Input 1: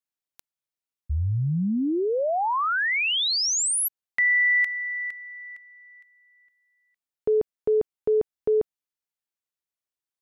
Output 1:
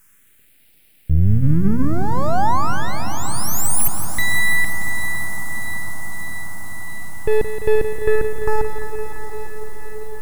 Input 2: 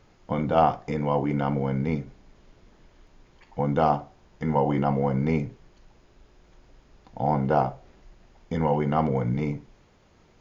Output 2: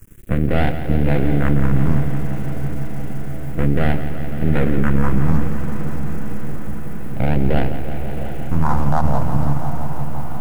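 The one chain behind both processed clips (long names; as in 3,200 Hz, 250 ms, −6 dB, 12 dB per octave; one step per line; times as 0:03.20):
adaptive Wiener filter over 41 samples
noise gate with hold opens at −54 dBFS
parametric band 2,600 Hz −15 dB 1 octave
mains-hum notches 60/120/180/240 Hz
in parallel at +1.5 dB: downward compressor, threshold −37 dBFS
on the sum: background noise white −62 dBFS
half-wave rectification
all-pass phaser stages 4, 0.3 Hz, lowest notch 380–1,100 Hz
on a send: feedback delay with all-pass diffusion 717 ms, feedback 75%, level −13.5 dB
on the sum: boost into a limiter +17 dB
feedback echo at a low word length 171 ms, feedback 80%, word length 7 bits, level −11 dB
level −4.5 dB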